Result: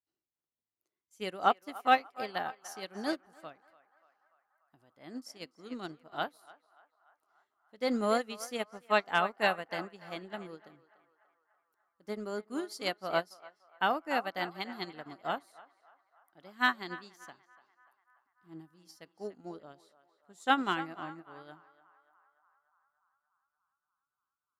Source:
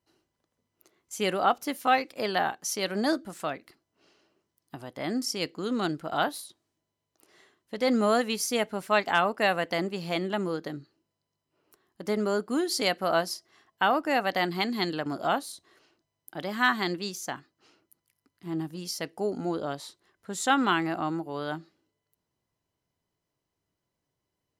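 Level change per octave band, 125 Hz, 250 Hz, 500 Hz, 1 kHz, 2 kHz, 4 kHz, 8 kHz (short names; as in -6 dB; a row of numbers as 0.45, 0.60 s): -12.0, -9.5, -7.5, -4.5, -5.0, -7.5, -15.0 dB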